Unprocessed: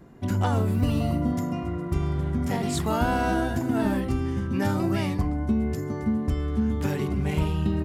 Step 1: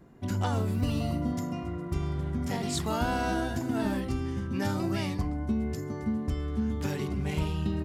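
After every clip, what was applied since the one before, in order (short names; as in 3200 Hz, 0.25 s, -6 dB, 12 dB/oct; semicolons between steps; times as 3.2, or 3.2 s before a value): dynamic EQ 5000 Hz, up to +6 dB, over -51 dBFS, Q 0.83; gain -5 dB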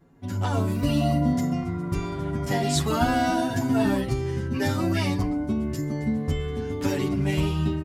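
comb 7.2 ms, depth 44%; AGC gain up to 8.5 dB; endless flanger 9.1 ms +0.62 Hz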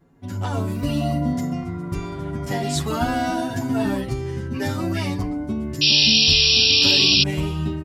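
painted sound noise, 5.81–7.24, 2400–5700 Hz -16 dBFS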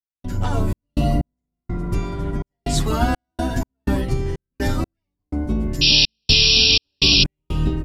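octaver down 2 oct, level +2 dB; step gate ".xx.x..xxx.xx.x" 62 bpm -60 dB; gain +1.5 dB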